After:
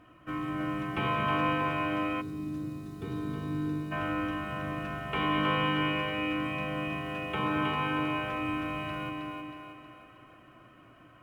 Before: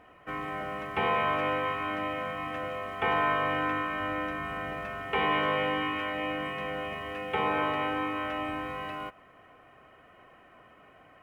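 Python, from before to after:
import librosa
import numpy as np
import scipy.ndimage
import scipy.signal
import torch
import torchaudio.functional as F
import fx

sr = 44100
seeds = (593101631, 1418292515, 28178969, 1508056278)

p1 = fx.graphic_eq_31(x, sr, hz=(125, 315, 800, 2000), db=(11, 11, -10, -9))
p2 = p1 + fx.echo_split(p1, sr, split_hz=320.0, low_ms=212, high_ms=317, feedback_pct=52, wet_db=-4, dry=0)
p3 = fx.spec_box(p2, sr, start_s=2.21, length_s=1.71, low_hz=490.0, high_hz=3500.0, gain_db=-18)
y = fx.peak_eq(p3, sr, hz=440.0, db=-9.5, octaves=0.6)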